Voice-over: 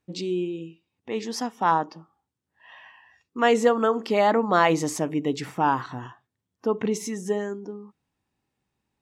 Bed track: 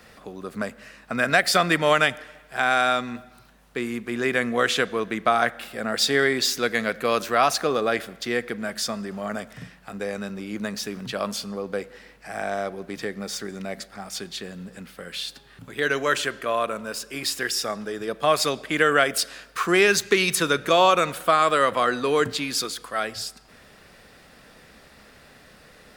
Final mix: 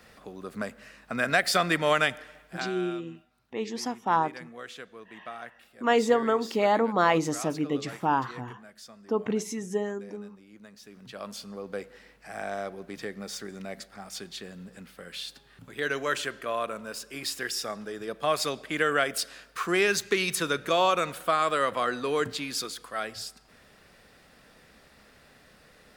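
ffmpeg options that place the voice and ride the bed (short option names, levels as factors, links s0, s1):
-filter_complex "[0:a]adelay=2450,volume=0.708[s0];[1:a]volume=3.16,afade=t=out:st=2.42:d=0.3:silence=0.158489,afade=t=in:st=10.79:d=1.04:silence=0.188365[s1];[s0][s1]amix=inputs=2:normalize=0"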